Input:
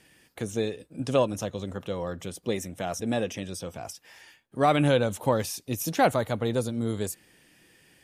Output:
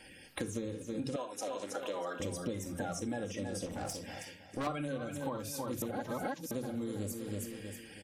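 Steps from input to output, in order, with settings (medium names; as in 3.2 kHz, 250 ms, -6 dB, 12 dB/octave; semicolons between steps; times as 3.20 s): coarse spectral quantiser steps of 30 dB; feedback delay 321 ms, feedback 31%, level -11 dB; reverberation, pre-delay 4 ms, DRR 3.5 dB; gain riding within 4 dB 2 s; 1.16–2.20 s: high-pass 580 Hz 12 dB/octave; 3.66–4.67 s: valve stage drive 30 dB, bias 0.55; 5.82–6.51 s: reverse; compression 16:1, threshold -35 dBFS, peak gain reduction 21.5 dB; trim +1 dB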